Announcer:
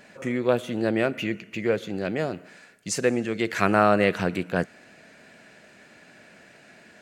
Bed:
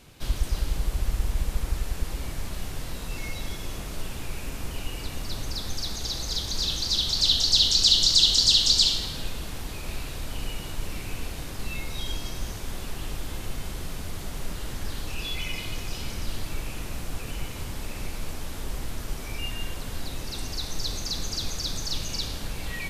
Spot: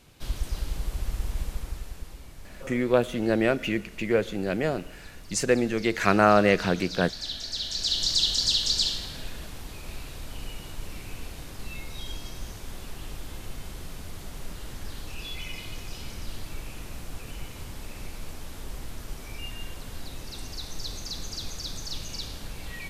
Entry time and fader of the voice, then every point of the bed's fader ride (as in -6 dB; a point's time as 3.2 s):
2.45 s, +0.5 dB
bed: 1.42 s -4 dB
2.26 s -13 dB
7.56 s -13 dB
8.09 s -5 dB